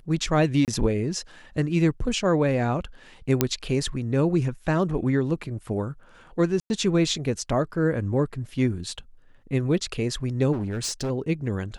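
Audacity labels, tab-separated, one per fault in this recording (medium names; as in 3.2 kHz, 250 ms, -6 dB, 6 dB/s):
0.650000	0.680000	dropout 28 ms
3.410000	3.410000	pop -4 dBFS
6.600000	6.700000	dropout 100 ms
10.520000	11.110000	clipped -24.5 dBFS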